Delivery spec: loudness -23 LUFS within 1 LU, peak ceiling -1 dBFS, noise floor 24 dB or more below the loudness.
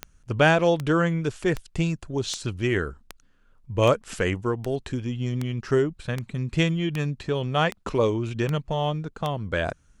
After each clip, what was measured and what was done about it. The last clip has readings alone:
clicks 13; loudness -25.5 LUFS; peak -5.0 dBFS; loudness target -23.0 LUFS
-> de-click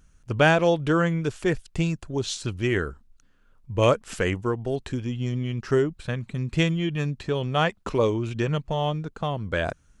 clicks 0; loudness -25.5 LUFS; peak -5.0 dBFS; loudness target -23.0 LUFS
-> gain +2.5 dB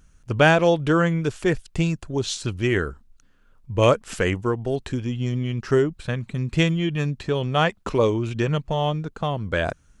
loudness -23.0 LUFS; peak -2.5 dBFS; noise floor -57 dBFS

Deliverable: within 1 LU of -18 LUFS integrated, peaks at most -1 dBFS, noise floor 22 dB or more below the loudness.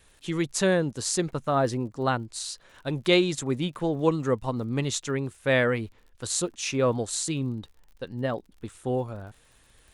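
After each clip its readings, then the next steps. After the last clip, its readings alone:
ticks 46/s; loudness -27.5 LUFS; peak -9.0 dBFS; loudness target -18.0 LUFS
-> de-click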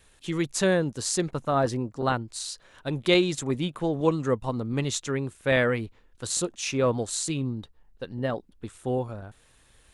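ticks 0.20/s; loudness -27.5 LUFS; peak -9.0 dBFS; loudness target -18.0 LUFS
-> gain +9.5 dB; limiter -1 dBFS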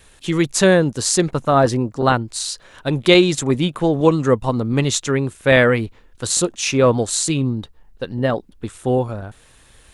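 loudness -18.0 LUFS; peak -1.0 dBFS; noise floor -50 dBFS

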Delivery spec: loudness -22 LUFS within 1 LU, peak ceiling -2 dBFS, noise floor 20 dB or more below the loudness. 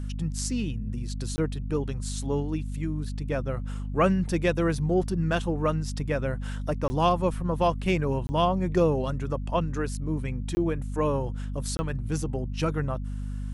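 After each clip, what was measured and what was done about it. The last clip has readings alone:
dropouts 5; longest dropout 20 ms; hum 50 Hz; harmonics up to 250 Hz; hum level -30 dBFS; loudness -28.0 LUFS; peak -9.0 dBFS; loudness target -22.0 LUFS
-> interpolate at 1.36/6.88/8.27/10.55/11.77, 20 ms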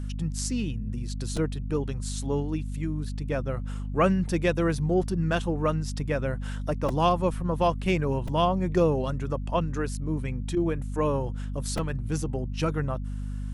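dropouts 0; hum 50 Hz; harmonics up to 250 Hz; hum level -30 dBFS
-> de-hum 50 Hz, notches 5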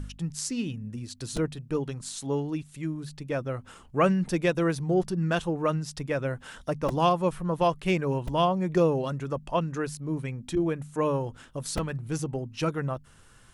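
hum none; loudness -29.0 LUFS; peak -9.5 dBFS; loudness target -22.0 LUFS
-> gain +7 dB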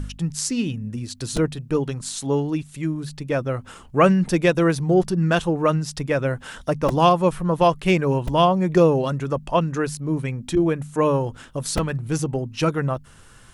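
loudness -22.0 LUFS; peak -2.5 dBFS; noise floor -47 dBFS

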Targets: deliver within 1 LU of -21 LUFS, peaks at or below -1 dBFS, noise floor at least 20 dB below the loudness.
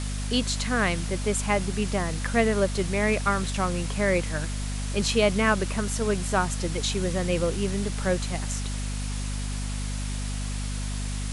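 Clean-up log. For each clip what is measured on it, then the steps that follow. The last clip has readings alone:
hum 50 Hz; harmonics up to 250 Hz; hum level -28 dBFS; noise floor -30 dBFS; noise floor target -47 dBFS; loudness -27.0 LUFS; peak -9.5 dBFS; loudness target -21.0 LUFS
-> notches 50/100/150/200/250 Hz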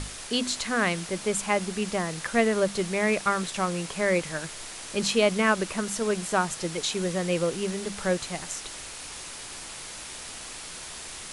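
hum none; noise floor -40 dBFS; noise floor target -48 dBFS
-> noise print and reduce 8 dB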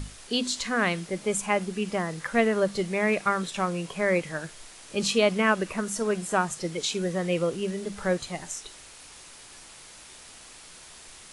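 noise floor -48 dBFS; loudness -27.5 LUFS; peak -10.0 dBFS; loudness target -21.0 LUFS
-> gain +6.5 dB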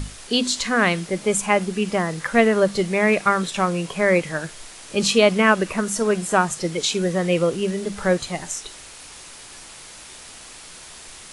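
loudness -21.0 LUFS; peak -3.5 dBFS; noise floor -42 dBFS

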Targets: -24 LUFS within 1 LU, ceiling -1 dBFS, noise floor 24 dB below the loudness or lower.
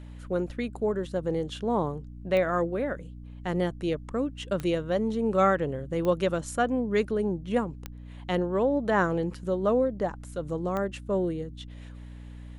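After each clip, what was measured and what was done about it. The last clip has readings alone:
clicks 5; hum 60 Hz; harmonics up to 300 Hz; hum level -41 dBFS; loudness -28.5 LUFS; peak -10.5 dBFS; loudness target -24.0 LUFS
-> de-click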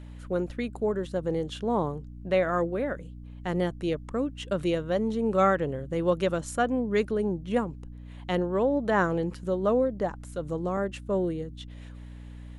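clicks 0; hum 60 Hz; harmonics up to 300 Hz; hum level -41 dBFS
-> de-hum 60 Hz, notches 5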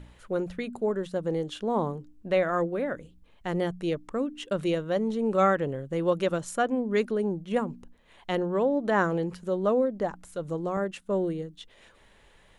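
hum none; loudness -28.5 LUFS; peak -10.5 dBFS; loudness target -24.0 LUFS
-> gain +4.5 dB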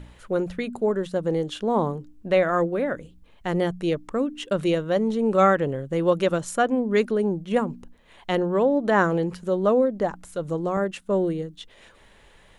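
loudness -24.0 LUFS; peak -6.0 dBFS; noise floor -54 dBFS

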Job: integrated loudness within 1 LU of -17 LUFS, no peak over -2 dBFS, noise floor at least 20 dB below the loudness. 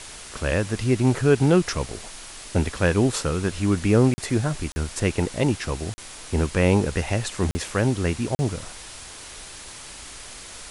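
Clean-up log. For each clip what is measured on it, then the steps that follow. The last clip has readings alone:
dropouts 5; longest dropout 40 ms; noise floor -41 dBFS; noise floor target -44 dBFS; loudness -23.5 LUFS; peak -5.0 dBFS; loudness target -17.0 LUFS
-> interpolate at 4.14/4.72/5.94/7.51/8.35, 40 ms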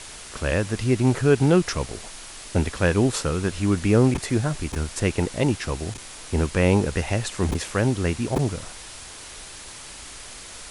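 dropouts 0; noise floor -40 dBFS; noise floor target -44 dBFS
-> denoiser 6 dB, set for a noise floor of -40 dBFS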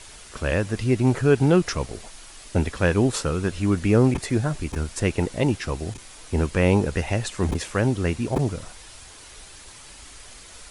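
noise floor -45 dBFS; loudness -23.5 LUFS; peak -5.0 dBFS; loudness target -17.0 LUFS
-> gain +6.5 dB; limiter -2 dBFS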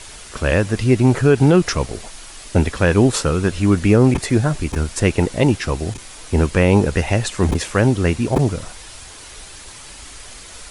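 loudness -17.5 LUFS; peak -2.0 dBFS; noise floor -38 dBFS

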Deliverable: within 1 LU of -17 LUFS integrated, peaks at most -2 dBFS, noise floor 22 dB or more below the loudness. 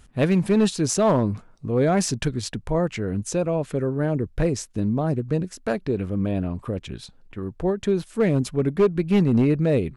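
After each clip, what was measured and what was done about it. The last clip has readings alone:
clipped 0.8%; flat tops at -12.5 dBFS; dropouts 1; longest dropout 1.8 ms; loudness -23.5 LUFS; peak -12.5 dBFS; loudness target -17.0 LUFS
-> clip repair -12.5 dBFS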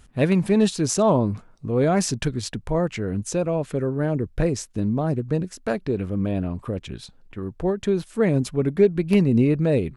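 clipped 0.0%; dropouts 1; longest dropout 1.8 ms
-> interpolate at 8.02, 1.8 ms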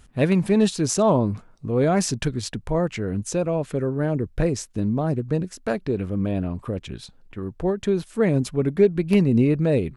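dropouts 0; loudness -23.0 LUFS; peak -5.5 dBFS; loudness target -17.0 LUFS
-> gain +6 dB; limiter -2 dBFS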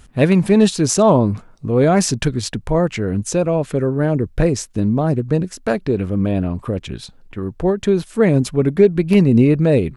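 loudness -17.0 LUFS; peak -2.0 dBFS; noise floor -46 dBFS

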